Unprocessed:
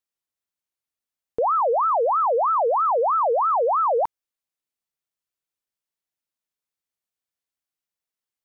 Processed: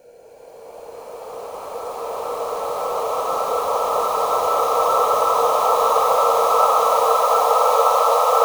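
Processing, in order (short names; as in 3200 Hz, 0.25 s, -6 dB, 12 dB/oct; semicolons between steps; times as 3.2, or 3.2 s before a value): companded quantiser 4-bit; Paulstretch 11×, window 1.00 s, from 0.98; gain +4.5 dB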